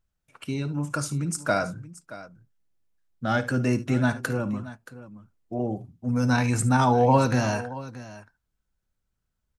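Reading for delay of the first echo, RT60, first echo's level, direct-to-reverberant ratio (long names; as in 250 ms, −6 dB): 55 ms, no reverb audible, −16.5 dB, no reverb audible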